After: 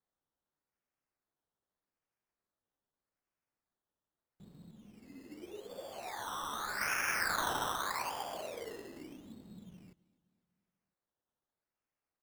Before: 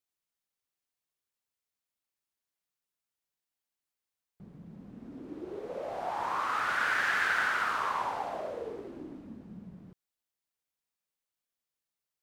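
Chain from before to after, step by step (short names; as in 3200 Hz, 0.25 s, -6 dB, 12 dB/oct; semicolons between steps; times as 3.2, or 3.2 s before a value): decimation with a swept rate 15×, swing 60% 0.82 Hz; feedback echo 0.252 s, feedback 59%, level -23.5 dB; 4.71–6.81 ensemble effect; gain -5.5 dB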